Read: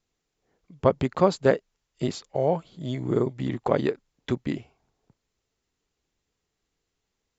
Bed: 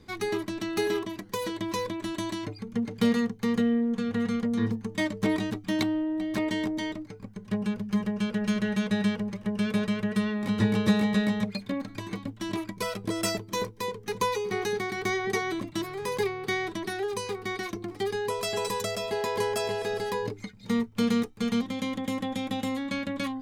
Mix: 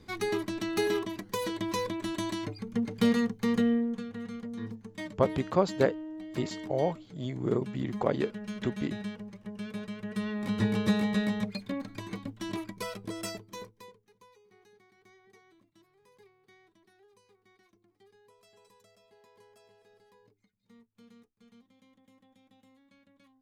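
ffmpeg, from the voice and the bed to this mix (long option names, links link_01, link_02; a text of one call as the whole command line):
ffmpeg -i stem1.wav -i stem2.wav -filter_complex "[0:a]adelay=4350,volume=-5dB[link_01];[1:a]volume=7dB,afade=type=out:start_time=3.71:duration=0.38:silence=0.298538,afade=type=in:start_time=9.99:duration=0.41:silence=0.398107,afade=type=out:start_time=12.48:duration=1.61:silence=0.0375837[link_02];[link_01][link_02]amix=inputs=2:normalize=0" out.wav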